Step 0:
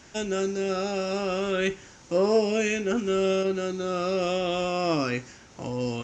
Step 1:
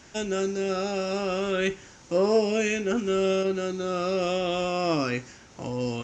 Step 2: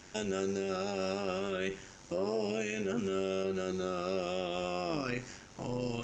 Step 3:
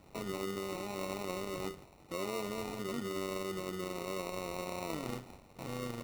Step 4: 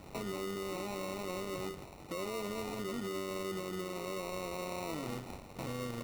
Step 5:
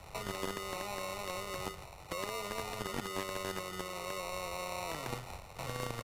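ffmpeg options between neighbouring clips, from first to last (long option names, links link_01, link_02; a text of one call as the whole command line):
ffmpeg -i in.wav -af anull out.wav
ffmpeg -i in.wav -af "areverse,acompressor=mode=upward:threshold=-39dB:ratio=2.5,areverse,alimiter=limit=-23dB:level=0:latency=1:release=61,tremolo=f=95:d=0.667" out.wav
ffmpeg -i in.wav -af "acrusher=samples=27:mix=1:aa=0.000001,volume=-4.5dB" out.wav
ffmpeg -i in.wav -af "acompressor=threshold=-42dB:ratio=3,asoftclip=type=tanh:threshold=-40dB,volume=8dB" out.wav
ffmpeg -i in.wav -filter_complex "[0:a]acrossover=split=150|470|6400[link_01][link_02][link_03][link_04];[link_02]acrusher=bits=5:mix=0:aa=0.000001[link_05];[link_01][link_05][link_03][link_04]amix=inputs=4:normalize=0,aresample=32000,aresample=44100,volume=3dB" out.wav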